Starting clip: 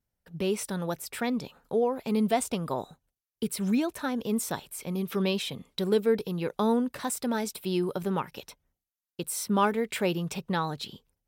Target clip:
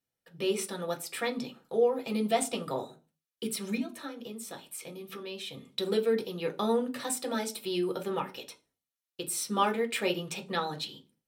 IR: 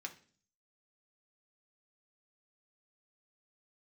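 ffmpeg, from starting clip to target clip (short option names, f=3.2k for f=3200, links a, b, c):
-filter_complex "[0:a]asettb=1/sr,asplit=3[a][b][c];[a]atrim=end=3.774[d];[b]atrim=start=3.77:end=5.54,asetpts=PTS-STARTPTS,afade=t=in:d=0.004:c=qsin,afade=t=out:st=1.766:d=0.004:c=qsin,acompressor=threshold=-36dB:ratio=6[e];[c]atrim=start=5.536[f];[d][e]acrossfade=d=0.004:c1=hsin:c2=qsin[g];[g][f]acrossfade=d=0.004:c1=qsin:c2=hsin[h];[1:a]atrim=start_sample=2205,asetrate=70560,aresample=44100[i];[h][i]afir=irnorm=-1:irlink=0,volume=7dB"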